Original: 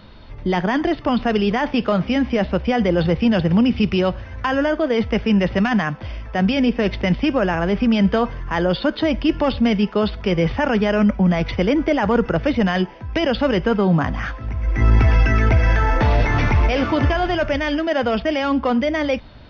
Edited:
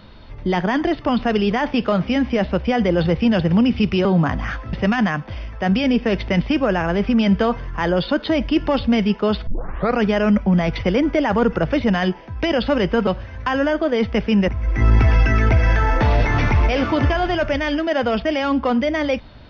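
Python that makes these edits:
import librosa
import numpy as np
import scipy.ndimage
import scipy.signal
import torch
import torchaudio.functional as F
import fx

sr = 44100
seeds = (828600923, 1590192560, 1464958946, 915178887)

y = fx.edit(x, sr, fx.swap(start_s=4.05, length_s=1.41, other_s=13.8, other_length_s=0.68),
    fx.tape_start(start_s=10.2, length_s=0.53), tone=tone)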